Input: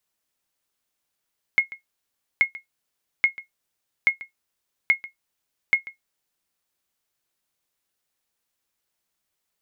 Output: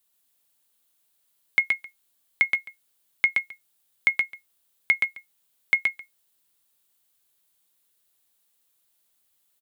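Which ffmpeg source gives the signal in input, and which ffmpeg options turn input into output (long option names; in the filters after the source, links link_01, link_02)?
-f lavfi -i "aevalsrc='0.376*(sin(2*PI*2160*mod(t,0.83))*exp(-6.91*mod(t,0.83)/0.13)+0.112*sin(2*PI*2160*max(mod(t,0.83)-0.14,0))*exp(-6.91*max(mod(t,0.83)-0.14,0)/0.13))':duration=4.98:sample_rate=44100"
-filter_complex "[0:a]highpass=frequency=61:width=0.5412,highpass=frequency=61:width=1.3066,aexciter=amount=1.5:drive=6:freq=3100,asplit=2[link_01][link_02];[link_02]aecho=0:1:123:0.668[link_03];[link_01][link_03]amix=inputs=2:normalize=0"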